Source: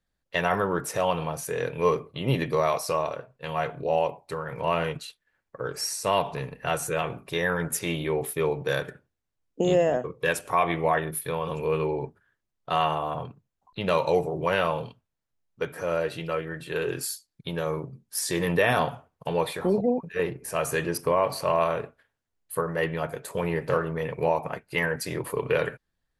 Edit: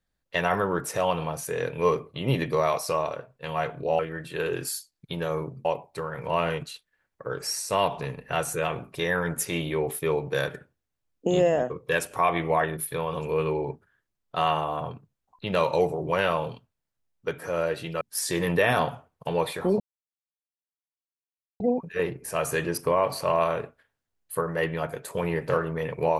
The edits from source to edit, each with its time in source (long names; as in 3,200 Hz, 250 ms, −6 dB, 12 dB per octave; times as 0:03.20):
0:16.35–0:18.01: move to 0:03.99
0:19.80: splice in silence 1.80 s